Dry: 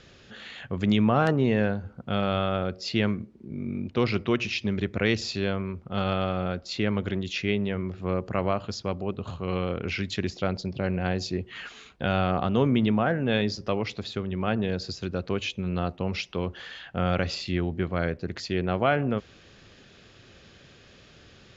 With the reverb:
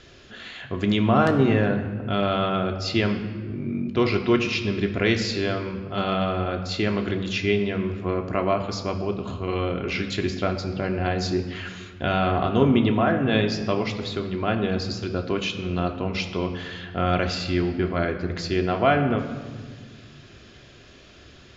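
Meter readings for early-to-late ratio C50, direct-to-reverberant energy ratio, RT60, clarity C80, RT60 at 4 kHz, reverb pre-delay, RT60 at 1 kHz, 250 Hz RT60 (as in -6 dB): 9.0 dB, 3.0 dB, 1.6 s, 10.5 dB, 1.1 s, 3 ms, 1.5 s, 2.5 s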